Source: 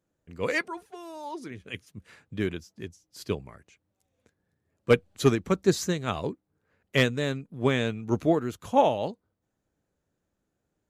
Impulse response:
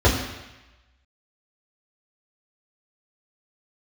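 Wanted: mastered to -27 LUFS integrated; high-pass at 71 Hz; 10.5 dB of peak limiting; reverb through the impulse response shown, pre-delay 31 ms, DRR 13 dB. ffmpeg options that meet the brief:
-filter_complex "[0:a]highpass=71,alimiter=limit=-18dB:level=0:latency=1,asplit=2[a][b];[1:a]atrim=start_sample=2205,adelay=31[c];[b][c]afir=irnorm=-1:irlink=0,volume=-33.5dB[d];[a][d]amix=inputs=2:normalize=0,volume=5dB"

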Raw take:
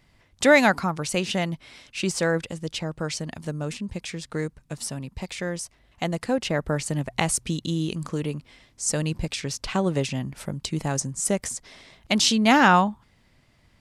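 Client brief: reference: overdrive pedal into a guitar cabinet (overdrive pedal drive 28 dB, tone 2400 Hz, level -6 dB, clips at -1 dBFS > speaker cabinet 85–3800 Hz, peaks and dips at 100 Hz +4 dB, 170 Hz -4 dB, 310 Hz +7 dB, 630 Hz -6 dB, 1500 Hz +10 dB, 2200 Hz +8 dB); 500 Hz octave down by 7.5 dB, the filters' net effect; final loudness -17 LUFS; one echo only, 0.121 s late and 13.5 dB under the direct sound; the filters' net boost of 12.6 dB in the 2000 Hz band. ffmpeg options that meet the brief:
-filter_complex "[0:a]equalizer=f=500:t=o:g=-8,equalizer=f=2k:t=o:g=6.5,aecho=1:1:121:0.211,asplit=2[a][b];[b]highpass=f=720:p=1,volume=28dB,asoftclip=type=tanh:threshold=-1dB[c];[a][c]amix=inputs=2:normalize=0,lowpass=f=2.4k:p=1,volume=-6dB,highpass=85,equalizer=f=100:t=q:w=4:g=4,equalizer=f=170:t=q:w=4:g=-4,equalizer=f=310:t=q:w=4:g=7,equalizer=f=630:t=q:w=4:g=-6,equalizer=f=1.5k:t=q:w=4:g=10,equalizer=f=2.2k:t=q:w=4:g=8,lowpass=f=3.8k:w=0.5412,lowpass=f=3.8k:w=1.3066,volume=-7.5dB"

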